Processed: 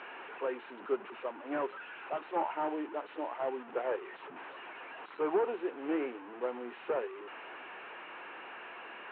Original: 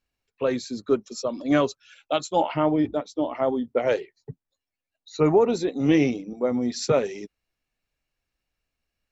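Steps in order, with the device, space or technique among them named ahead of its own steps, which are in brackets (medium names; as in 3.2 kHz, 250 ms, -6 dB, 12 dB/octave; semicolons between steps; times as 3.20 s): digital answering machine (band-pass 400–3100 Hz; one-bit delta coder 16 kbps, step -32 dBFS; cabinet simulation 350–4000 Hz, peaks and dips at 360 Hz +5 dB, 590 Hz -4 dB, 930 Hz +5 dB, 1.5 kHz +3 dB, 2.1 kHz -5 dB, 3.4 kHz -7 dB); trim -7.5 dB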